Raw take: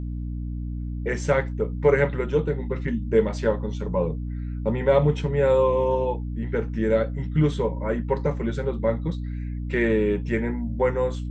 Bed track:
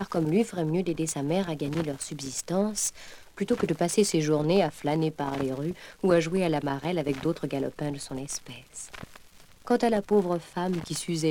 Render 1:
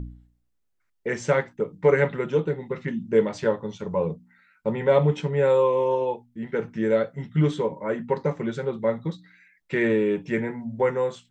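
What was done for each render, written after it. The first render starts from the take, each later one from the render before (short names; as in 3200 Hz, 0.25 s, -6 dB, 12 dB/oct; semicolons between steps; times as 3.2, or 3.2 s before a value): de-hum 60 Hz, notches 5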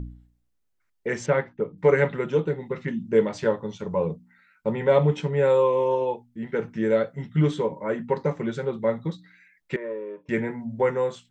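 1.26–1.78 air absorption 230 m; 9.76–10.29 double band-pass 760 Hz, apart 0.82 oct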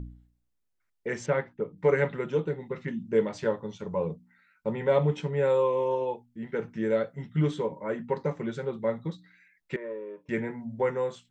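gain -4.5 dB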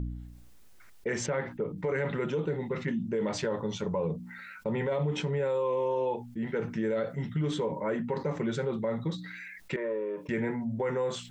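limiter -23.5 dBFS, peak gain reduction 11 dB; fast leveller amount 50%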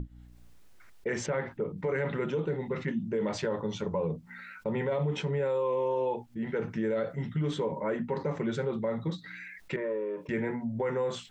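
high shelf 5700 Hz -6 dB; notches 60/120/180/240/300 Hz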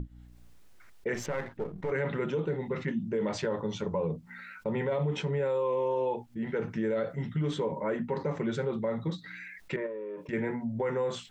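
1.14–1.91 half-wave gain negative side -7 dB; 9.86–10.33 compressor 3:1, threshold -36 dBFS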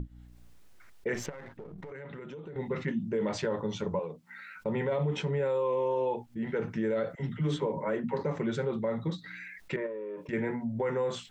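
1.29–2.56 compressor 16:1, threshold -39 dBFS; 3.99–4.56 HPF 710 Hz 6 dB/oct; 7.15–8.21 dispersion lows, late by 51 ms, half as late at 430 Hz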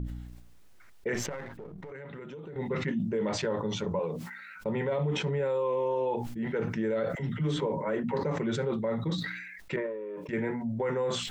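sustainer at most 44 dB/s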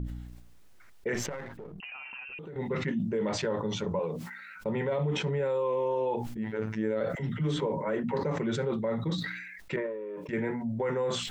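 1.8–2.39 inverted band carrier 2900 Hz; 6.37–7.01 robotiser 109 Hz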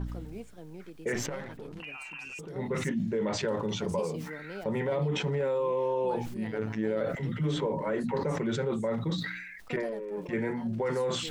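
add bed track -19 dB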